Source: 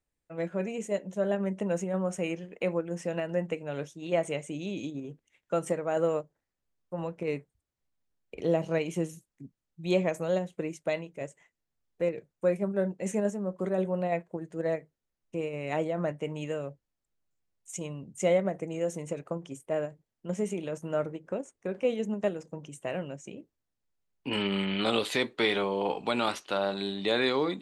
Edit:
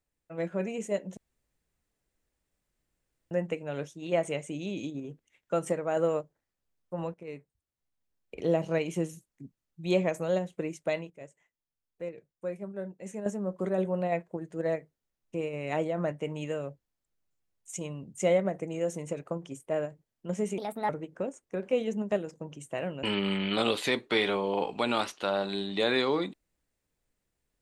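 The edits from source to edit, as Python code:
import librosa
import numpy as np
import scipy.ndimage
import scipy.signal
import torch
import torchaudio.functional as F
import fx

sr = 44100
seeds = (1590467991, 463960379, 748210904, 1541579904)

y = fx.edit(x, sr, fx.room_tone_fill(start_s=1.17, length_s=2.14),
    fx.fade_in_from(start_s=7.14, length_s=1.24, floor_db=-13.0),
    fx.clip_gain(start_s=11.1, length_s=2.16, db=-9.0),
    fx.speed_span(start_s=20.58, length_s=0.43, speed=1.38),
    fx.cut(start_s=23.15, length_s=1.16), tone=tone)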